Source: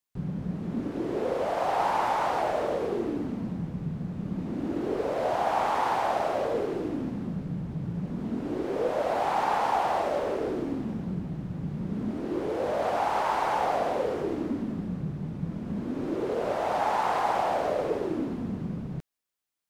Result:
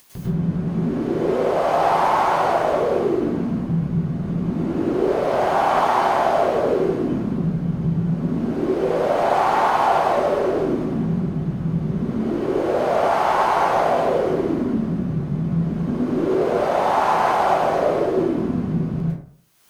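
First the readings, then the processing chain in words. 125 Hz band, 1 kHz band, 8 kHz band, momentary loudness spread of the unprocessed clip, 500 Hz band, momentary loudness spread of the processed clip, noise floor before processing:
+11.0 dB, +8.0 dB, n/a, 8 LU, +9.5 dB, 6 LU, -38 dBFS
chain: notch 7400 Hz, Q 17; upward compressor, threshold -29 dBFS; plate-style reverb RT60 0.54 s, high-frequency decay 0.55×, pre-delay 90 ms, DRR -7.5 dB

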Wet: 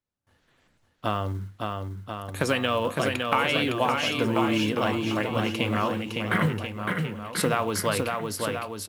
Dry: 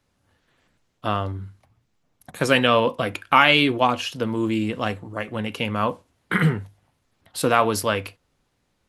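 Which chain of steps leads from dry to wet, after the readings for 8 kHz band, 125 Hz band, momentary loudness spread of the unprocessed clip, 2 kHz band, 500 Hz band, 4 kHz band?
+0.5 dB, -2.0 dB, 15 LU, -4.5 dB, -3.0 dB, -4.5 dB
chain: short-mantissa float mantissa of 4-bit; compressor, threshold -21 dBFS, peak gain reduction 11 dB; gate with hold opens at -58 dBFS; on a send: bouncing-ball echo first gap 0.56 s, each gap 0.85×, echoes 5

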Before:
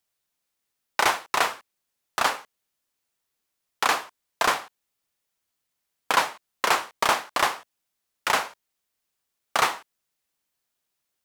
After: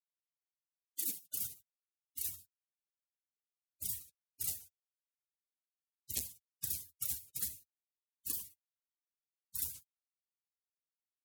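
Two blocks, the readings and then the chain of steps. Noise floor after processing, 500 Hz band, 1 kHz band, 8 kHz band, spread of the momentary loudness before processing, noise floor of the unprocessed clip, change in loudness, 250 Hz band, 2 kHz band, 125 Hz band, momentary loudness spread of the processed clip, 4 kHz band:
under -85 dBFS, -37.0 dB, under -40 dB, -7.0 dB, 11 LU, -81 dBFS, -14.5 dB, -19.5 dB, -37.0 dB, -8.0 dB, 12 LU, -22.0 dB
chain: spectral gate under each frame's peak -30 dB weak; high-pass sweep 3400 Hz -> 79 Hz, 0.04–1.6; core saturation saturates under 3400 Hz; gain +6.5 dB

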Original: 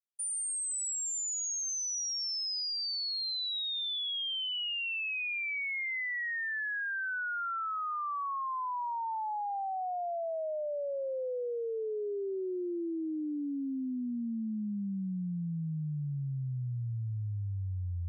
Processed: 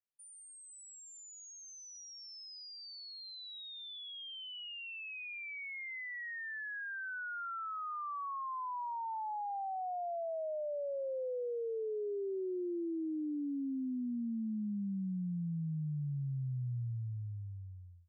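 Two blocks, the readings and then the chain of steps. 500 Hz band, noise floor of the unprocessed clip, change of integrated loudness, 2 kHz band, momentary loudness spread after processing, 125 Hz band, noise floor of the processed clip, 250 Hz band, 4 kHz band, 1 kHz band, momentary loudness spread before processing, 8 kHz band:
-3.0 dB, -35 dBFS, -6.0 dB, -8.0 dB, 10 LU, -3.5 dB, -54 dBFS, -2.0 dB, -13.0 dB, -4.5 dB, 5 LU, under -15 dB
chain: ending faded out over 1.31 s; LPF 1100 Hz 6 dB/oct; gain -2 dB

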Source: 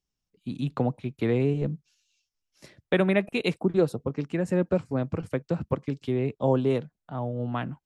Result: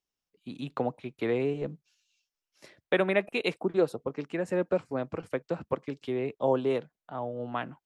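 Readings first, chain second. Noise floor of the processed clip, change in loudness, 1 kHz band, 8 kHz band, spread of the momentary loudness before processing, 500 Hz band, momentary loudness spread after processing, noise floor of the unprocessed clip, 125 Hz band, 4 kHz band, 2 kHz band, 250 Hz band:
under -85 dBFS, -3.5 dB, 0.0 dB, n/a, 9 LU, -1.5 dB, 10 LU, under -85 dBFS, -11.0 dB, -1.5 dB, -0.5 dB, -6.0 dB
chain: tone controls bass -13 dB, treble -4 dB

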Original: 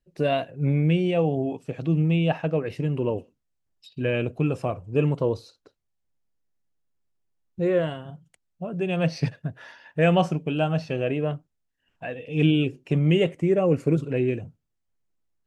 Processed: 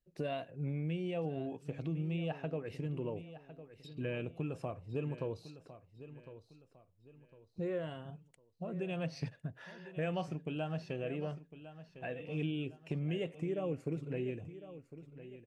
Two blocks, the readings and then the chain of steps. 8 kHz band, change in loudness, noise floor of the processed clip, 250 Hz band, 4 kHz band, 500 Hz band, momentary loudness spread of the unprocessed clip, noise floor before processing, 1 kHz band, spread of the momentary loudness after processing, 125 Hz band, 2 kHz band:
n/a, -15.0 dB, -70 dBFS, -14.5 dB, -15.0 dB, -14.5 dB, 13 LU, -77 dBFS, -15.0 dB, 16 LU, -14.5 dB, -14.0 dB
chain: compressor 2.5:1, threshold -30 dBFS, peak gain reduction 10.5 dB; on a send: feedback echo 1.055 s, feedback 36%, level -14 dB; on the sum: gain -7.5 dB

